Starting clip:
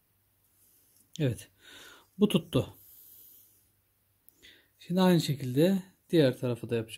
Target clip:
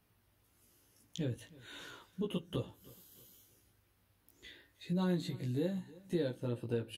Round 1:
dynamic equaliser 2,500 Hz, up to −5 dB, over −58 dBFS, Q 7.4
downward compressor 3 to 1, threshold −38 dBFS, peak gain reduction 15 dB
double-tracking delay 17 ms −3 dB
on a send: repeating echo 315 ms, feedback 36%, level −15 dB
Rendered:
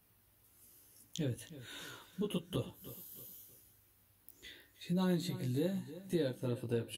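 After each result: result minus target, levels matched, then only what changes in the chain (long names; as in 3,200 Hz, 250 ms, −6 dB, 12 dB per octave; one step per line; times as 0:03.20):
8,000 Hz band +6.0 dB; echo-to-direct +6.5 dB
add after downward compressor: high-shelf EQ 8,200 Hz −11.5 dB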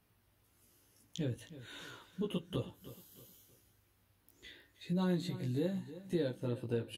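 echo-to-direct +6.5 dB
change: repeating echo 315 ms, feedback 36%, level −21.5 dB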